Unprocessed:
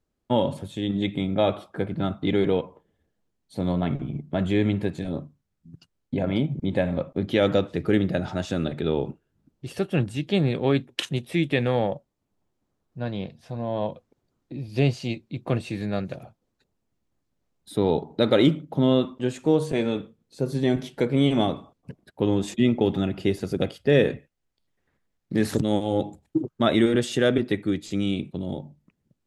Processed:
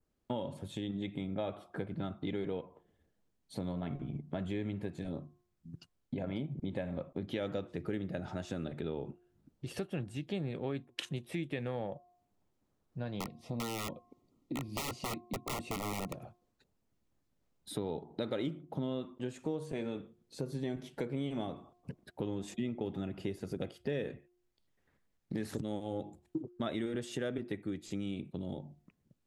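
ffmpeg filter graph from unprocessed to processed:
-filter_complex "[0:a]asettb=1/sr,asplit=3[s0][s1][s2];[s0]atrim=end=13.204[s3];[s1]atrim=start=13.2:end=16.15,asetpts=PTS-STARTPTS,afade=t=in:d=0.004:c=qsin,afade=t=out:st=2.946:d=0.004:c=qsin,equalizer=f=270:t=o:w=1.1:g=9.5,aeval=exprs='(mod(9.44*val(0)+1,2)-1)/9.44':c=same,asuperstop=centerf=1600:order=20:qfactor=3.7[s4];[s2]atrim=start=16.146[s5];[s3][s4]acrossfade=d=0.004:c1=hsin:c2=qsin[s6];[s6][s5]acrossfade=d=0.004:c1=qsin:c2=hsin,bandreject=f=355.9:t=h:w=4,bandreject=f=711.8:t=h:w=4,bandreject=f=1067.7:t=h:w=4,adynamicequalizer=threshold=0.00447:dfrequency=3900:dqfactor=1.2:tfrequency=3900:tqfactor=1.2:attack=5:release=100:ratio=0.375:range=2.5:mode=cutabove:tftype=bell,acompressor=threshold=0.0158:ratio=3,volume=0.794"

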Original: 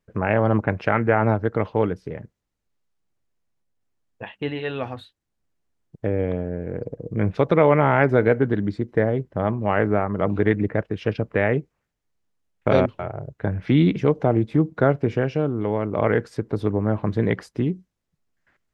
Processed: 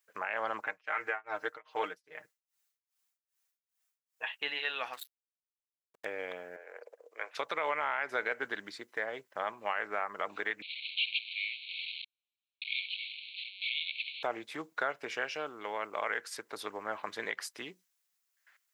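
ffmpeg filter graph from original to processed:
-filter_complex "[0:a]asettb=1/sr,asplit=3[s0][s1][s2];[s0]atrim=end=0.634[s3];[s1]atrim=start=0.63:end=4.28,asetpts=PTS-STARTPTS,afade=t=in:d=0.004:c=qsin,afade=t=out:st=3.646:d=0.004:c=qsin,aecho=1:1:6.5:0.76,atrim=end_sample=160965,tremolo=f=2.5:d=0.99[s4];[s2]atrim=start=4.276[s5];[s3][s4]acrossfade=d=0.004:c1=hsin:c2=qsin[s6];[s6][s5]acrossfade=d=0.004:c1=qsin:c2=hsin,asettb=1/sr,asplit=3[s7][s8][s9];[s7]atrim=end=4.934[s10];[s8]atrim=start=4.93:end=6.05,asetpts=PTS-STARTPTS,afade=t=in:d=0.004:c=qsin,afade=t=out:st=1.116:d=0.004:c=qsin,highshelf=f=3000:g=4.5,aeval=exprs='sgn(val(0))*max(abs(val(0))-0.00841,0)':c=same[s11];[s9]atrim=start=6.046[s12];[s10][s11]acrossfade=d=0.004:c1=hsin:c2=qsin[s13];[s13][s12]acrossfade=d=0.004:c1=qsin:c2=hsin,asettb=1/sr,asplit=3[s14][s15][s16];[s14]atrim=end=6.564[s17];[s15]atrim=start=6.56:end=7.35,asetpts=PTS-STARTPTS,afade=t=in:d=0.004:c=qsin,afade=t=out:st=0.786:d=0.004:c=qsin,highpass=f=480:w=0.5412,highpass=f=480:w=1.3066,highshelf=f=2700:g=-8[s18];[s16]atrim=start=7.346[s19];[s17][s18]acrossfade=d=0.004:c1=hsin:c2=qsin[s20];[s20][s19]acrossfade=d=0.004:c1=qsin:c2=hsin,asettb=1/sr,asplit=3[s21][s22][s23];[s21]atrim=end=10.624[s24];[s22]atrim=start=10.62:end=14.23,asetpts=PTS-STARTPTS,afade=t=in:d=0.004:c=qsin,afade=t=out:st=3.606:d=0.004:c=qsin,aeval=exprs='val(0)+0.5*0.0631*sgn(val(0))':c=same,asuperpass=centerf=3100:order=20:qfactor=1.5,highshelf=f=3300:g=-5[s25];[s23]atrim=start=14.226[s26];[s24][s25]acrossfade=d=0.004:c1=hsin:c2=qsin[s27];[s27][s26]acrossfade=d=0.004:c1=qsin:c2=hsin,highpass=1200,aemphasis=mode=production:type=50kf,alimiter=limit=0.0944:level=0:latency=1:release=167"

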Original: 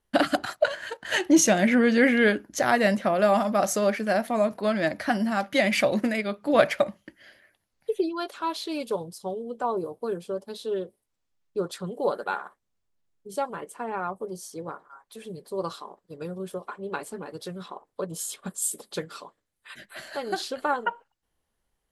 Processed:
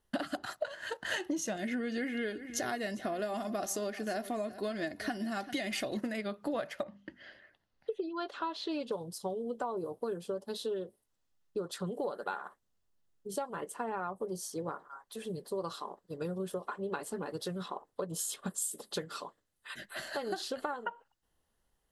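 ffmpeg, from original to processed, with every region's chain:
-filter_complex "[0:a]asettb=1/sr,asplit=3[s0][s1][s2];[s0]atrim=end=1.564[s3];[s1]atrim=start=1.56:end=5.97,asetpts=PTS-STARTPTS,afade=t=in:d=0.004:c=qsin,afade=t=out:st=4.406:d=0.004:c=qsin,equalizer=f=950:t=o:w=1.4:g=-7.5,aecho=1:1:2.8:0.47,atrim=end_sample=194481,aecho=1:1:391:0.112,atrim=end_sample=194481[s4];[s2]atrim=start=5.966[s5];[s3][s4]acrossfade=d=0.004:c1=hsin:c2=qsin[s6];[s6][s5]acrossfade=d=0.004:c1=qsin:c2=hsin,asettb=1/sr,asplit=3[s7][s8][s9];[s7]atrim=end=6.834[s10];[s8]atrim=start=6.83:end=8.92,asetpts=PTS-STARTPTS,afade=t=in:d=0.004:c=qsin,afade=t=out:st=2.086:d=0.004:c=qsin,lowpass=4200,bandreject=f=50:t=h:w=6,bandreject=f=100:t=h:w=6,bandreject=f=150:t=h:w=6,bandreject=f=200:t=h:w=6,bandreject=f=250:t=h:w=6[s11];[s9]atrim=start=8.916[s12];[s10][s11]acrossfade=d=0.004:c1=hsin:c2=qsin[s13];[s13][s12]acrossfade=d=0.004:c1=qsin:c2=hsin,bandreject=f=2300:w=7.9,acompressor=threshold=0.0251:ratio=12"

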